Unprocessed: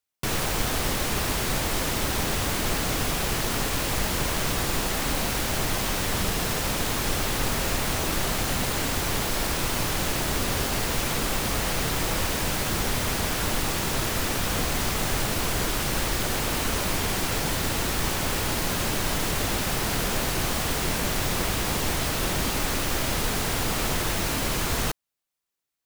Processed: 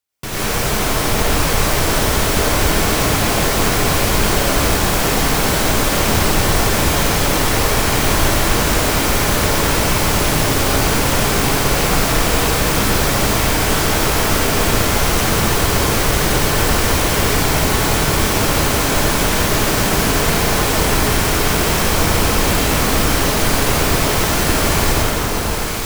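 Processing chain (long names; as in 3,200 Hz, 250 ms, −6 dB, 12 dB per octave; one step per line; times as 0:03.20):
in parallel at −6 dB: gain into a clipping stage and back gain 28 dB
on the sum: delay that swaps between a low-pass and a high-pass 480 ms, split 1,400 Hz, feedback 76%, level −2.5 dB
dense smooth reverb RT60 1.8 s, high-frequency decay 0.7×, pre-delay 80 ms, DRR −7.5 dB
level −1.5 dB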